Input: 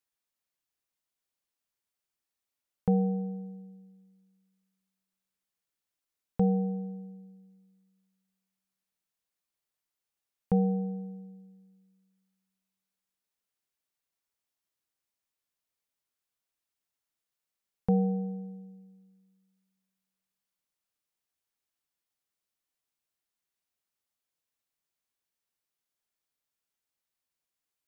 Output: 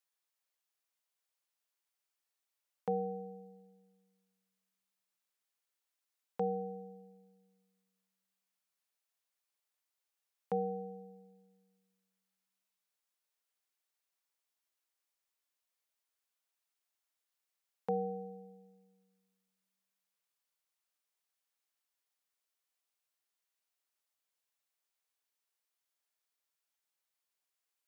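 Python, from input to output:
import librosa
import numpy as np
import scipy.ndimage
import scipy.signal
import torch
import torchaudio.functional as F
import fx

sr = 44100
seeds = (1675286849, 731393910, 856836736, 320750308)

y = scipy.signal.sosfilt(scipy.signal.butter(2, 480.0, 'highpass', fs=sr, output='sos'), x)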